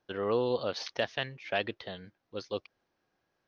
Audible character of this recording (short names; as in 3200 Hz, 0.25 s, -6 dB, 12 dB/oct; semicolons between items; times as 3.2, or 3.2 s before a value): noise floor -80 dBFS; spectral tilt -2.5 dB/oct